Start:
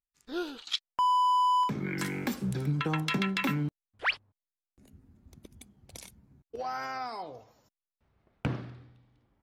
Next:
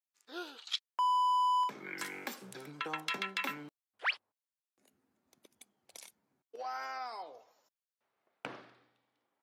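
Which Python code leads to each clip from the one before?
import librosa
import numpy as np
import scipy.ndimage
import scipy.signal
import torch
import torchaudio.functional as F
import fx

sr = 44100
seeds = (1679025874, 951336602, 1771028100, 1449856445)

y = scipy.signal.sosfilt(scipy.signal.butter(2, 510.0, 'highpass', fs=sr, output='sos'), x)
y = y * 10.0 ** (-4.0 / 20.0)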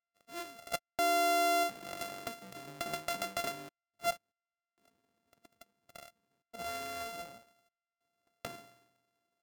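y = np.r_[np.sort(x[:len(x) // 64 * 64].reshape(-1, 64), axis=1).ravel(), x[len(x) // 64 * 64:]]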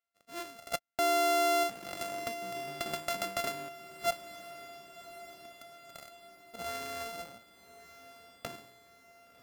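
y = fx.echo_diffused(x, sr, ms=1112, feedback_pct=55, wet_db=-14.5)
y = y * 10.0 ** (1.5 / 20.0)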